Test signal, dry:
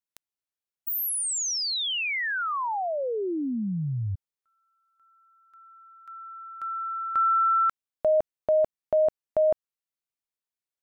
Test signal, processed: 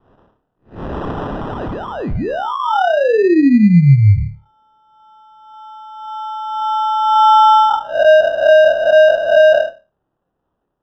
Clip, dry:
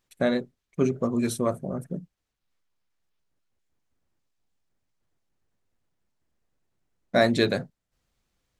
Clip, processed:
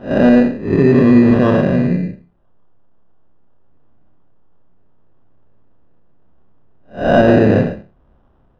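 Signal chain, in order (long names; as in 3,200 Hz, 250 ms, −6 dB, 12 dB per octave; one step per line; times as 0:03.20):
spectrum smeared in time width 217 ms
dynamic equaliser 810 Hz, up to +5 dB, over −42 dBFS, Q 2.3
in parallel at −2 dB: downward compressor, threshold −36 dBFS
on the sum: decimation without filtering 20×
head-to-tape spacing loss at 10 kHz 45 dB
on a send: flutter between parallel walls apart 4.9 metres, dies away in 0.24 s
on the sum: boost into a limiter +19.5 dB
level −1 dB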